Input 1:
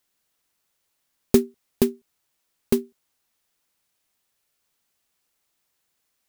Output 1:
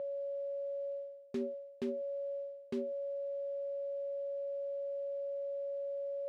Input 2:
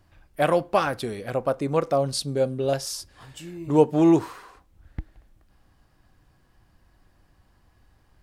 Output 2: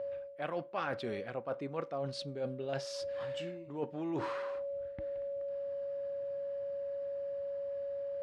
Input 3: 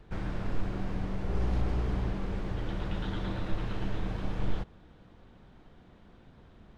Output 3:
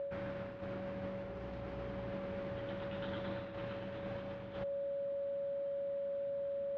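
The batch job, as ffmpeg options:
-af "aeval=exprs='val(0)+0.0178*sin(2*PI*560*n/s)':channel_layout=same,areverse,acompressor=threshold=-33dB:ratio=20,areverse,highpass=110,lowpass=2800,tiltshelf=frequency=1400:gain=-3.5,volume=2dB"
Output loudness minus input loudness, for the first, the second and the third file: −15.0, −15.5, −6.5 LU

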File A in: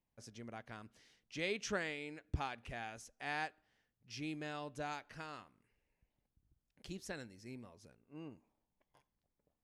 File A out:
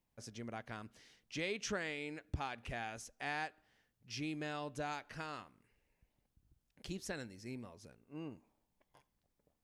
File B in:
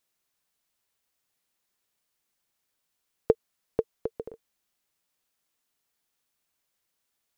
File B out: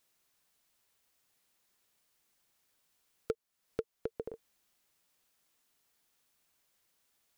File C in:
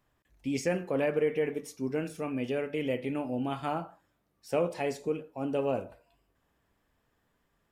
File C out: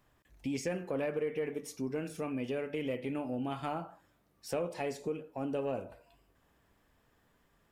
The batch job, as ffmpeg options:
-af "acompressor=threshold=-42dB:ratio=2,asoftclip=type=tanh:threshold=-25.5dB,volume=4dB"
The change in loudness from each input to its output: +1.0, −11.0, −4.5 LU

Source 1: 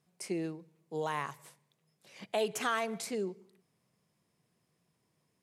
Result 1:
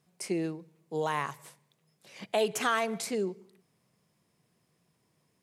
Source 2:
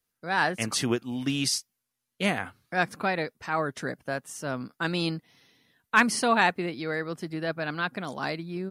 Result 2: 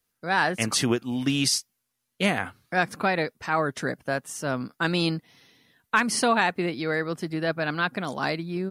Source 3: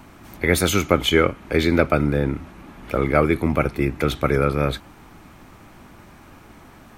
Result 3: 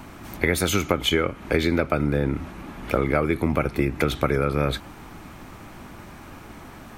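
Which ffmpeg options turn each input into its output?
-af "acompressor=threshold=-21dB:ratio=10,volume=4dB"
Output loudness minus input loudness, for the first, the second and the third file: +4.0, +2.0, −3.0 LU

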